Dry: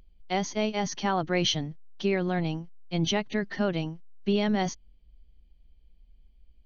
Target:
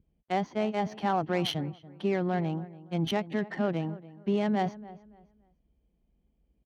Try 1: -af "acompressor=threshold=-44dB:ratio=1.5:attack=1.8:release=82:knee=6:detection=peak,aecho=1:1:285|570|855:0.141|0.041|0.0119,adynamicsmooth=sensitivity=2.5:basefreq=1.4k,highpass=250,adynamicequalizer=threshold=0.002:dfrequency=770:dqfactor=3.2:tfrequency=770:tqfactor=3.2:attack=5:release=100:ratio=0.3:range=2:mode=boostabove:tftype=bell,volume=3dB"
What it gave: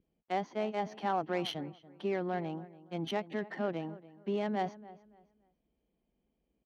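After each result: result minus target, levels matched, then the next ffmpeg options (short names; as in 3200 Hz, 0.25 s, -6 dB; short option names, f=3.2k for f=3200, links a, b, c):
125 Hz band -4.5 dB; compressor: peak gain reduction +3.5 dB
-af "acompressor=threshold=-44dB:ratio=1.5:attack=1.8:release=82:knee=6:detection=peak,aecho=1:1:285|570|855:0.141|0.041|0.0119,adynamicsmooth=sensitivity=2.5:basefreq=1.4k,highpass=110,adynamicequalizer=threshold=0.002:dfrequency=770:dqfactor=3.2:tfrequency=770:tqfactor=3.2:attack=5:release=100:ratio=0.3:range=2:mode=boostabove:tftype=bell,volume=3dB"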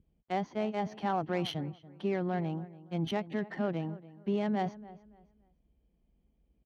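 compressor: peak gain reduction +3.5 dB
-af "acompressor=threshold=-33.5dB:ratio=1.5:attack=1.8:release=82:knee=6:detection=peak,aecho=1:1:285|570|855:0.141|0.041|0.0119,adynamicsmooth=sensitivity=2.5:basefreq=1.4k,highpass=110,adynamicequalizer=threshold=0.002:dfrequency=770:dqfactor=3.2:tfrequency=770:tqfactor=3.2:attack=5:release=100:ratio=0.3:range=2:mode=boostabove:tftype=bell,volume=3dB"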